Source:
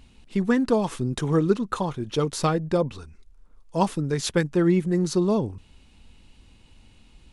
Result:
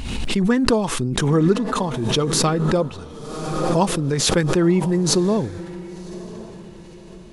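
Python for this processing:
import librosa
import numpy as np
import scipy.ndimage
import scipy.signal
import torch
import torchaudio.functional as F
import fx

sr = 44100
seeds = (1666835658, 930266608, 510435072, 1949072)

y = fx.echo_diffused(x, sr, ms=1042, feedback_pct=40, wet_db=-15.5)
y = fx.pre_swell(y, sr, db_per_s=32.0)
y = y * librosa.db_to_amplitude(2.5)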